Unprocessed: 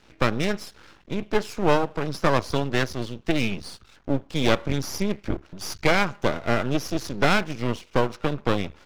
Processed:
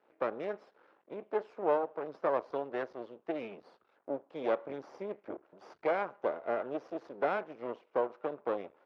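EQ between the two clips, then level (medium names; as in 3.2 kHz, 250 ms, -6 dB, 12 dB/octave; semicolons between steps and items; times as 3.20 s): ladder band-pass 660 Hz, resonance 25%; +3.0 dB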